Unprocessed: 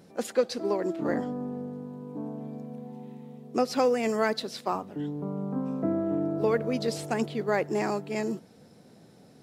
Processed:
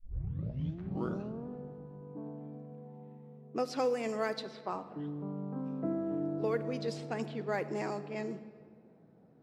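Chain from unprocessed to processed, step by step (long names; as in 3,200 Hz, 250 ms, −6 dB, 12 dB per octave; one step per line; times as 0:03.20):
turntable start at the beginning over 1.48 s
low-pass that shuts in the quiet parts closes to 1,200 Hz, open at −21 dBFS
rectangular room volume 3,000 cubic metres, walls mixed, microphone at 0.62 metres
level −8 dB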